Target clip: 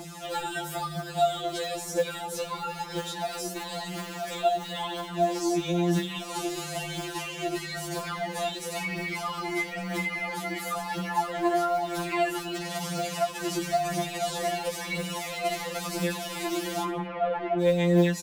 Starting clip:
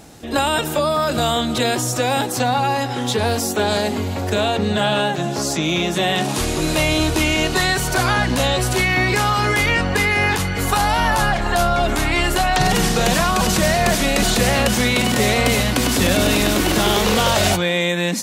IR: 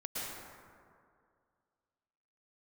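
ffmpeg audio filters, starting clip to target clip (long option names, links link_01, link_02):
-filter_complex "[0:a]highpass=frequency=52:width=0.5412,highpass=frequency=52:width=1.3066,aphaser=in_gain=1:out_gain=1:delay=3.1:decay=0.76:speed=1:type=triangular,acrossover=split=760[link_01][link_02];[link_01]acrusher=bits=3:mode=log:mix=0:aa=0.000001[link_03];[link_03][link_02]amix=inputs=2:normalize=0,acrossover=split=270|810[link_04][link_05][link_06];[link_04]acompressor=threshold=-35dB:ratio=4[link_07];[link_05]acompressor=threshold=-29dB:ratio=4[link_08];[link_06]acompressor=threshold=-36dB:ratio=4[link_09];[link_07][link_08][link_09]amix=inputs=3:normalize=0,asettb=1/sr,asplit=3[link_10][link_11][link_12];[link_10]atrim=end=12.604[link_13];[link_11]atrim=start=12.6:end=13.44,asetpts=PTS-STARTPTS,afade=type=in:duration=0.004:curve=qsin,afade=type=out:start_time=0.836:duration=0.004:curve=qsin,lowshelf=frequency=250:gain=-9[link_14];[link_12]atrim=start=13.436[link_15];[link_13][link_14]acrossfade=duration=0.004:curve1=hsin:curve2=qsin[link_16];[link_16][link_15]acrossfade=duration=0.004:curve1=qsin:curve2=hsin,asplit=3[link_17][link_18][link_19];[link_17]afade=type=out:start_time=16.83:duration=0.02[link_20];[link_18]lowpass=frequency=2200:width=0.5412,lowpass=frequency=2200:width=1.3066,afade=type=in:start_time=16.83:duration=0.02,afade=type=out:start_time=17.59:duration=0.02[link_21];[link_19]afade=type=in:start_time=17.59:duration=0.02[link_22];[link_20][link_21][link_22]amix=inputs=3:normalize=0,asplit=4[link_23][link_24][link_25][link_26];[link_24]adelay=80,afreqshift=43,volume=-16dB[link_27];[link_25]adelay=160,afreqshift=86,volume=-24.6dB[link_28];[link_26]adelay=240,afreqshift=129,volume=-33.3dB[link_29];[link_23][link_27][link_28][link_29]amix=inputs=4:normalize=0,afftfilt=real='re*2.83*eq(mod(b,8),0)':imag='im*2.83*eq(mod(b,8),0)':win_size=2048:overlap=0.75"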